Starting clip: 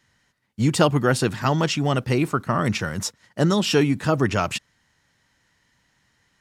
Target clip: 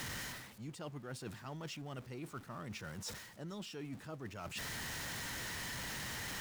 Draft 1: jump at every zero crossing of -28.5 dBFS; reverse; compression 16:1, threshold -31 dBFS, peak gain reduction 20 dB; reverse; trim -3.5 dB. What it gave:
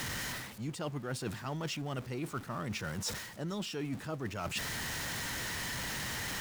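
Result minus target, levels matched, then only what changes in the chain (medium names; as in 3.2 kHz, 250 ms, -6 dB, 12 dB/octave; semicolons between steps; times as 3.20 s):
compression: peak gain reduction -8 dB
change: compression 16:1, threshold -39.5 dBFS, peak gain reduction 28 dB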